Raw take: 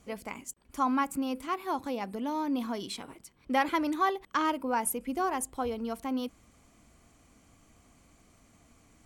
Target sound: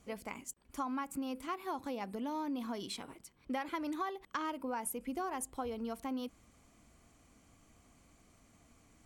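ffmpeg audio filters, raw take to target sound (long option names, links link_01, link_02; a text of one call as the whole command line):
ffmpeg -i in.wav -af "acompressor=threshold=-31dB:ratio=6,volume=-3.5dB" out.wav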